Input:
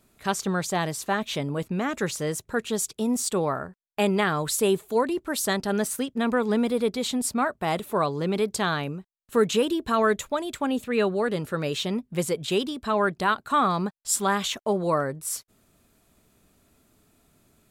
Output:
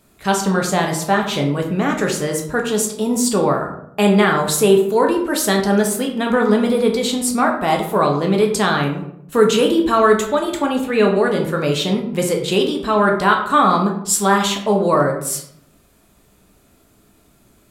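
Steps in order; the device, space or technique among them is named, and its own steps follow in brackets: bathroom (reverb RT60 0.70 s, pre-delay 8 ms, DRR 1.5 dB); gain +6 dB

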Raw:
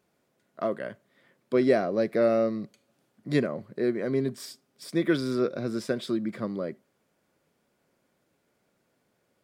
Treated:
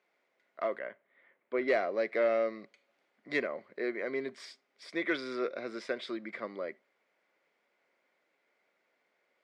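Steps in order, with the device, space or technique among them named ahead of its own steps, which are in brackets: intercom (BPF 490–4200 Hz; bell 2100 Hz +10.5 dB 0.32 oct; soft clip -15.5 dBFS, distortion -23 dB); 0.79–1.68 air absorption 380 m; gain -2 dB

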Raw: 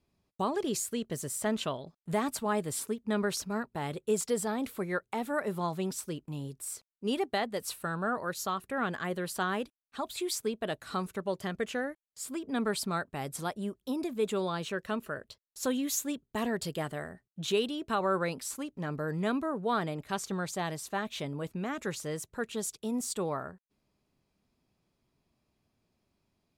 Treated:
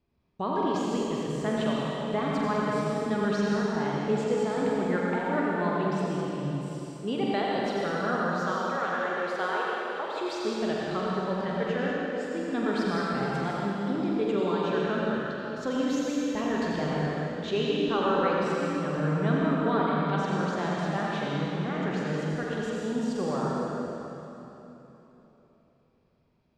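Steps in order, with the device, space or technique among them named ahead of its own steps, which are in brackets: 8.45–10.18 steep high-pass 350 Hz 36 dB/oct; tunnel (flutter echo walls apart 7.7 m, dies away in 0.33 s; reverb RT60 3.4 s, pre-delay 73 ms, DRR -4.5 dB); air absorption 180 m

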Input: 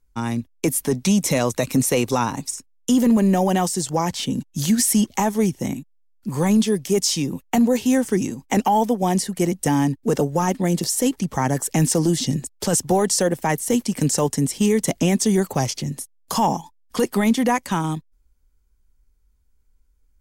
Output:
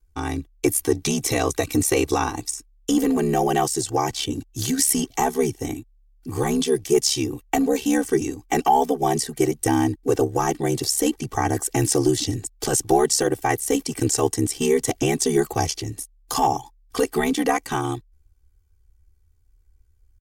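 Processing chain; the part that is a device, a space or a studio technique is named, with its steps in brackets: ring-modulated robot voice (ring modulator 35 Hz; comb 2.6 ms, depth 97%)

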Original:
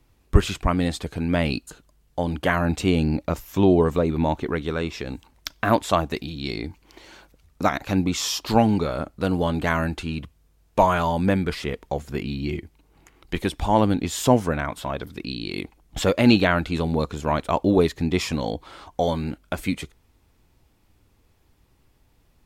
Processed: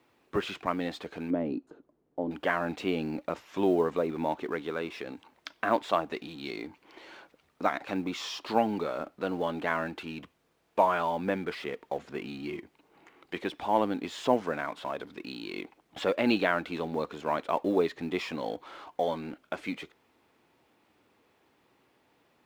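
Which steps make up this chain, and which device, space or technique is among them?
phone line with mismatched companding (BPF 300–3200 Hz; G.711 law mismatch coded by mu); 1.3–2.31 EQ curve 190 Hz 0 dB, 280 Hz +7 dB, 2800 Hz -20 dB; gain -6 dB

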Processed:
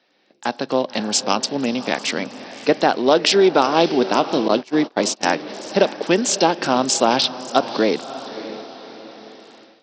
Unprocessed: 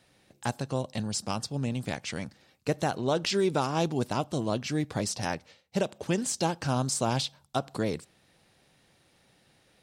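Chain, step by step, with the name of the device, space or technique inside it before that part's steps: diffused feedback echo 0.587 s, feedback 45%, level -13.5 dB; 4.48–5.23 gate -30 dBFS, range -28 dB; Bluetooth headset (HPF 240 Hz 24 dB/oct; AGC gain up to 13 dB; downsampling 16000 Hz; gain +1.5 dB; SBC 64 kbps 44100 Hz)

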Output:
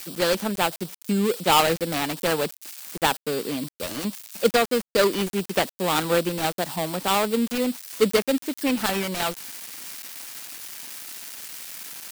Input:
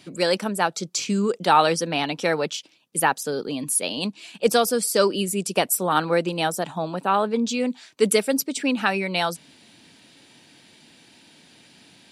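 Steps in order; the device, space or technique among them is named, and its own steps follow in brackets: budget class-D amplifier (switching dead time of 0.23 ms; switching spikes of -18.5 dBFS)

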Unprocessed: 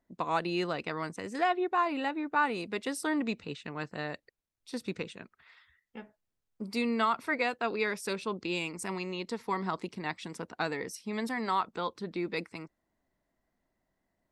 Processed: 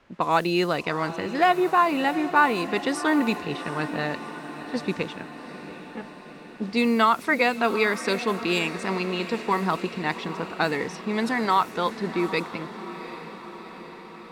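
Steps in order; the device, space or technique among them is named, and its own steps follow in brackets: cassette deck with a dynamic noise filter (white noise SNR 24 dB; low-pass opened by the level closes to 1500 Hz, open at -27.5 dBFS); 8.07–8.59 high shelf 8300 Hz +8 dB; diffused feedback echo 0.749 s, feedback 65%, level -13 dB; gain +8.5 dB

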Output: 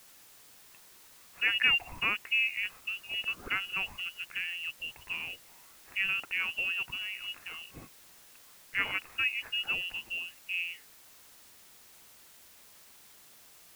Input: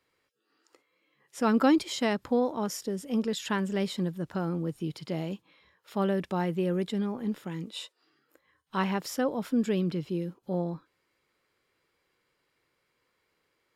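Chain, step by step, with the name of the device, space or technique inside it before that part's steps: scrambled radio voice (BPF 390–3100 Hz; inverted band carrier 3100 Hz; white noise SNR 20 dB)

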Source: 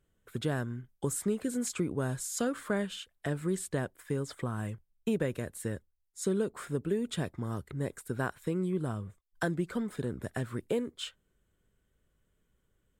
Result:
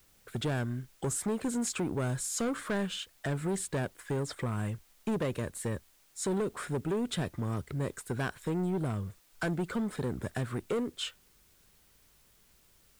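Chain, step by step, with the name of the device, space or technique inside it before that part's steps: compact cassette (soft clip -31 dBFS, distortion -10 dB; LPF 11000 Hz; wow and flutter; white noise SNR 31 dB); gain +4.5 dB

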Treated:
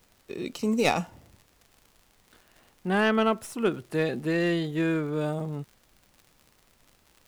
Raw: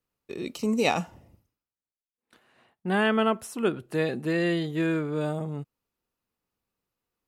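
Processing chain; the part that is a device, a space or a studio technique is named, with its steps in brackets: record under a worn stylus (tracing distortion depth 0.057 ms; crackle 77/s -42 dBFS; pink noise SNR 34 dB)

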